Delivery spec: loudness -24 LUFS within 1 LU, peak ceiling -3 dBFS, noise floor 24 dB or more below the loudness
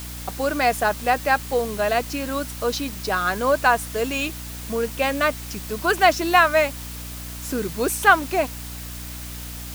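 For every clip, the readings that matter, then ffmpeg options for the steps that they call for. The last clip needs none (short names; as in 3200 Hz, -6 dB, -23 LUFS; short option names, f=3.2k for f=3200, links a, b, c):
hum 60 Hz; harmonics up to 300 Hz; hum level -34 dBFS; noise floor -34 dBFS; noise floor target -46 dBFS; loudness -21.5 LUFS; peak -3.0 dBFS; loudness target -24.0 LUFS
-> -af "bandreject=f=60:t=h:w=6,bandreject=f=120:t=h:w=6,bandreject=f=180:t=h:w=6,bandreject=f=240:t=h:w=6,bandreject=f=300:t=h:w=6"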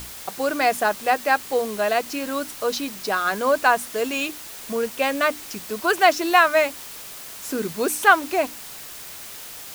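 hum none; noise floor -38 dBFS; noise floor target -46 dBFS
-> -af "afftdn=nr=8:nf=-38"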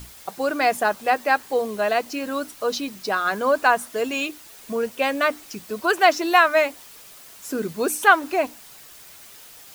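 noise floor -45 dBFS; noise floor target -46 dBFS
-> -af "afftdn=nr=6:nf=-45"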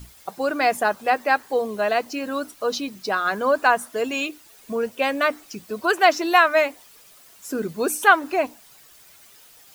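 noise floor -51 dBFS; loudness -22.0 LUFS; peak -2.5 dBFS; loudness target -24.0 LUFS
-> -af "volume=-2dB"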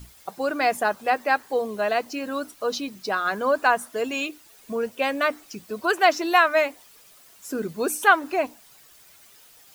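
loudness -24.0 LUFS; peak -4.5 dBFS; noise floor -53 dBFS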